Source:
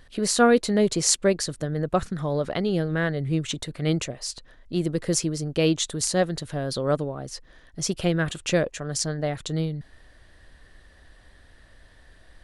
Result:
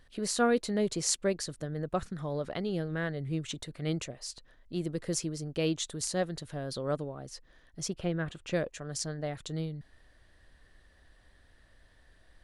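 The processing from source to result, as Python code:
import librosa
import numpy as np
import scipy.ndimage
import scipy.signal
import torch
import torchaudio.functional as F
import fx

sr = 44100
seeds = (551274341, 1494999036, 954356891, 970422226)

y = fx.lowpass(x, sr, hz=2100.0, slope=6, at=(7.88, 8.53))
y = y * 10.0 ** (-8.5 / 20.0)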